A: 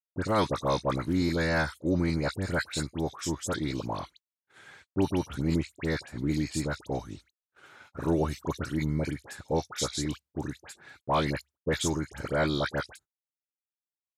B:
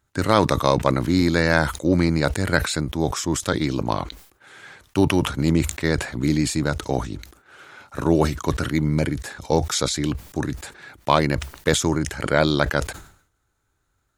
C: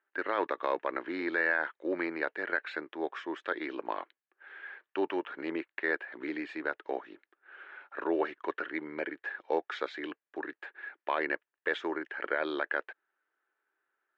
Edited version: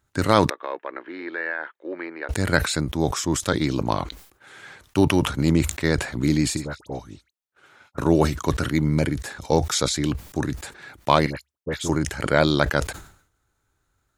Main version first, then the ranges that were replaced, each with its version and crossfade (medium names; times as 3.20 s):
B
0.50–2.29 s: from C
6.57–7.98 s: from A
11.26–11.89 s: from A